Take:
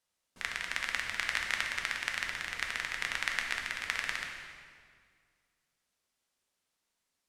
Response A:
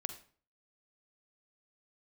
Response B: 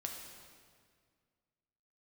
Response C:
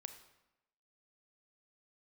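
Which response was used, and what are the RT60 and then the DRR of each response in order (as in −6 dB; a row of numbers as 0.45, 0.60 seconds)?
B; 0.45, 1.9, 0.95 seconds; 8.5, 1.0, 8.0 decibels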